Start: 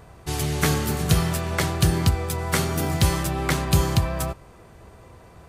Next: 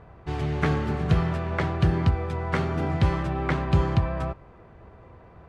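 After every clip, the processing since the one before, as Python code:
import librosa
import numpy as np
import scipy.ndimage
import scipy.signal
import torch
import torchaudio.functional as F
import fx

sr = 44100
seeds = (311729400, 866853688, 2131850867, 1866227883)

y = scipy.signal.sosfilt(scipy.signal.butter(2, 2100.0, 'lowpass', fs=sr, output='sos'), x)
y = y * 10.0 ** (-1.5 / 20.0)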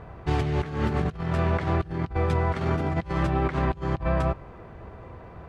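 y = fx.over_compress(x, sr, threshold_db=-28.0, ratio=-0.5)
y = y * 10.0 ** (2.5 / 20.0)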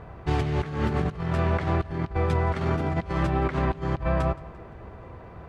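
y = fx.echo_feedback(x, sr, ms=172, feedback_pct=46, wet_db=-20)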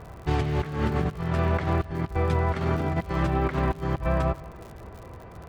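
y = fx.dmg_crackle(x, sr, seeds[0], per_s=89.0, level_db=-38.0)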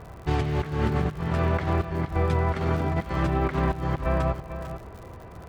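y = x + 10.0 ** (-11.0 / 20.0) * np.pad(x, (int(447 * sr / 1000.0), 0))[:len(x)]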